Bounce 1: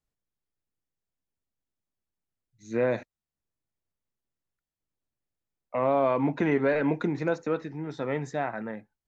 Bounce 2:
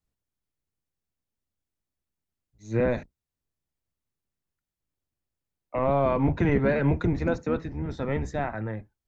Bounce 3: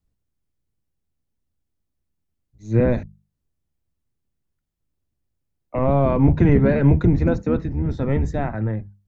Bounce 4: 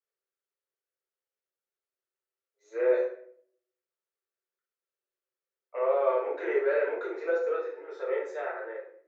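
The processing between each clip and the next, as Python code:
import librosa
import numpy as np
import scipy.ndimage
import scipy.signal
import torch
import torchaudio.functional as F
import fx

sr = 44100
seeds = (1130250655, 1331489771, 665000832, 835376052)

y1 = fx.octave_divider(x, sr, octaves=1, level_db=3.0)
y2 = fx.low_shelf(y1, sr, hz=370.0, db=12.0)
y2 = fx.hum_notches(y2, sr, base_hz=50, count=4)
y3 = scipy.signal.sosfilt(scipy.signal.cheby1(6, 9, 360.0, 'highpass', fs=sr, output='sos'), y2)
y3 = fx.room_shoebox(y3, sr, seeds[0], volume_m3=85.0, walls='mixed', distance_m=1.6)
y3 = y3 * librosa.db_to_amplitude(-7.5)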